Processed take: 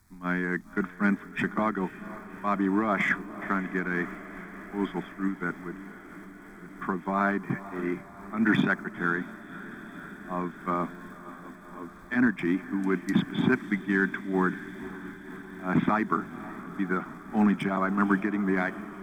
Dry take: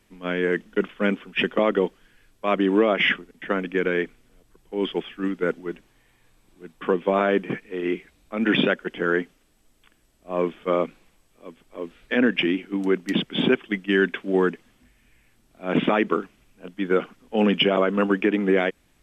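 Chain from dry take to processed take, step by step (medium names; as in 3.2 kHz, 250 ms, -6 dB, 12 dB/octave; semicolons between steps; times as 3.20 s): peaking EQ 87 Hz +10 dB 0.87 oct; in parallel at -12 dB: hard clipper -17 dBFS, distortion -11 dB; on the sum: crackle 520 per s -50 dBFS; static phaser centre 1.2 kHz, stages 4; on a send: echo that smears into a reverb 537 ms, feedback 76%, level -15.5 dB; on the sum: random flutter of the level, depth 55%; trim +1 dB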